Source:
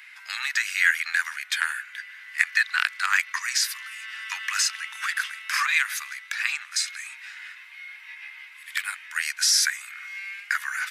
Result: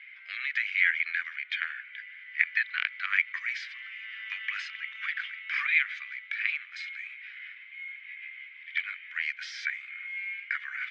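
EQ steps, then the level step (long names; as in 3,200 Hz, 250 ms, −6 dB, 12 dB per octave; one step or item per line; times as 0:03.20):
formant filter i
high-frequency loss of the air 190 metres
parametric band 710 Hz +14 dB 2.3 octaves
+6.5 dB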